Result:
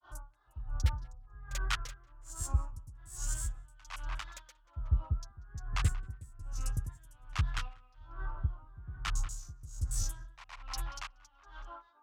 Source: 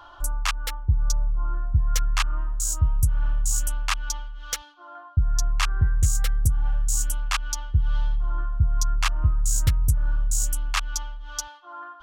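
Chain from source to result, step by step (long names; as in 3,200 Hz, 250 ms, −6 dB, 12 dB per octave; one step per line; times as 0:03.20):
high-pass filter 52 Hz 12 dB per octave
high-shelf EQ 6,300 Hz −11 dB
in parallel at −7 dB: soft clipping −25 dBFS, distortion −7 dB
on the sum: granular cloud 260 ms, grains 10 per second, spray 486 ms, pitch spread up and down by 3 semitones
on a send: tape delay 186 ms, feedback 56%, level −11 dB, low-pass 1,900 Hz
on the sum: tremolo with a sine in dB 1.2 Hz, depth 22 dB
level −4 dB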